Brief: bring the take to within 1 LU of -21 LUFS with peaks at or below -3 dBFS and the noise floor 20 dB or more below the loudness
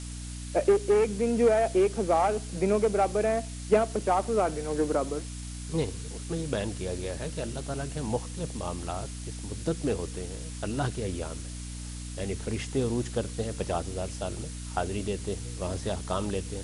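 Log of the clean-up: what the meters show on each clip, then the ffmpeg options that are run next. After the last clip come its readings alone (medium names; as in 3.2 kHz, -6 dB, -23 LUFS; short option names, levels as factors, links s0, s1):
hum 60 Hz; highest harmonic 300 Hz; hum level -36 dBFS; noise floor -38 dBFS; noise floor target -50 dBFS; loudness -29.5 LUFS; peak level -11.0 dBFS; loudness target -21.0 LUFS
-> -af "bandreject=f=60:t=h:w=4,bandreject=f=120:t=h:w=4,bandreject=f=180:t=h:w=4,bandreject=f=240:t=h:w=4,bandreject=f=300:t=h:w=4"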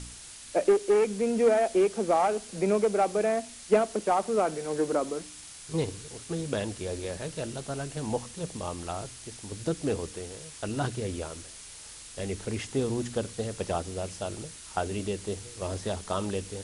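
hum not found; noise floor -46 dBFS; noise floor target -50 dBFS
-> -af "afftdn=nr=6:nf=-46"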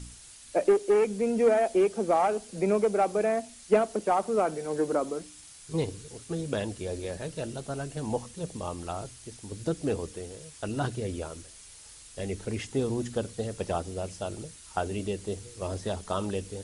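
noise floor -50 dBFS; loudness -30.0 LUFS; peak level -11.0 dBFS; loudness target -21.0 LUFS
-> -af "volume=2.82,alimiter=limit=0.708:level=0:latency=1"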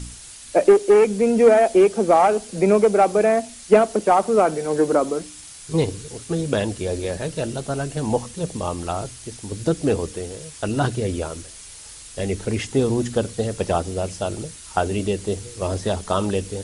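loudness -21.0 LUFS; peak level -3.0 dBFS; noise floor -41 dBFS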